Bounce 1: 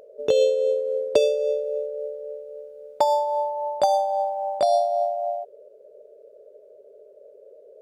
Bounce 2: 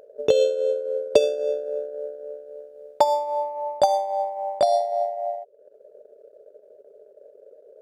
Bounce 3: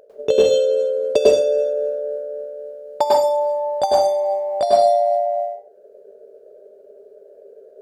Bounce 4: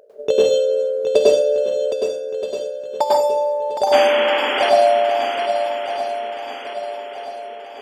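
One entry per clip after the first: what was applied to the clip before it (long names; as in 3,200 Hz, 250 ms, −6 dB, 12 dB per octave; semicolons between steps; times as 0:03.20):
transient designer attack +4 dB, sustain −8 dB; level −1 dB
convolution reverb RT60 0.40 s, pre-delay 96 ms, DRR −5 dB; level −1 dB
low-shelf EQ 130 Hz −8 dB; sound drawn into the spectrogram noise, 0:03.92–0:04.70, 220–3,400 Hz −22 dBFS; feedback echo with a long and a short gap by turns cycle 1,276 ms, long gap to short 1.5 to 1, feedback 43%, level −8 dB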